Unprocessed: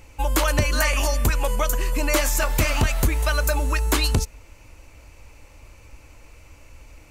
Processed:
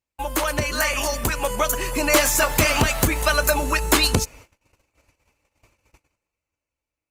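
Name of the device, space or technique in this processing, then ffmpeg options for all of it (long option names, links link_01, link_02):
video call: -af "highpass=frequency=160:poles=1,dynaudnorm=framelen=440:gausssize=7:maxgain=7dB,agate=range=-37dB:threshold=-43dB:ratio=16:detection=peak" -ar 48000 -c:a libopus -b:a 24k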